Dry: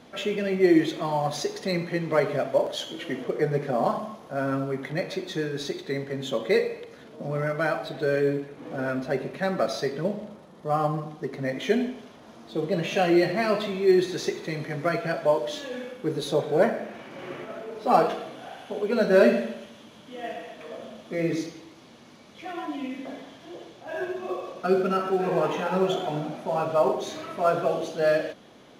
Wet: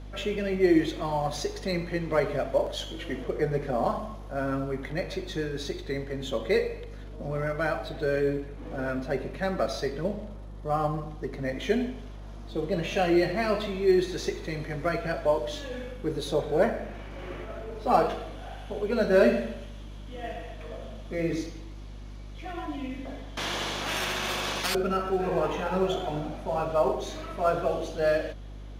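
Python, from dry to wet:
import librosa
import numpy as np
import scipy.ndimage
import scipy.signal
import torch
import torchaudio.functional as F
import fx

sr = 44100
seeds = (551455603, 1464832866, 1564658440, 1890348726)

y = fx.dmg_buzz(x, sr, base_hz=50.0, harmonics=7, level_db=-39.0, tilt_db=-9, odd_only=False)
y = fx.spectral_comp(y, sr, ratio=10.0, at=(23.37, 24.75))
y = F.gain(torch.from_numpy(y), -2.5).numpy()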